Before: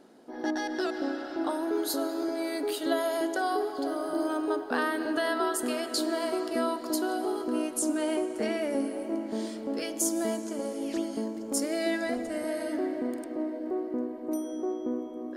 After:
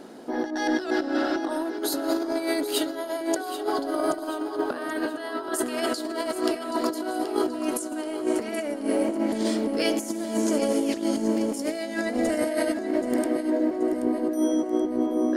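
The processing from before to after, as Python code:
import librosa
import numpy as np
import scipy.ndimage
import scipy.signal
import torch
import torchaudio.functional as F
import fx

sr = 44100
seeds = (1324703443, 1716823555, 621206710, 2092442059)

p1 = fx.over_compress(x, sr, threshold_db=-34.0, ratio=-0.5)
p2 = p1 + fx.echo_feedback(p1, sr, ms=779, feedback_pct=48, wet_db=-11.5, dry=0)
y = p2 * librosa.db_to_amplitude(8.0)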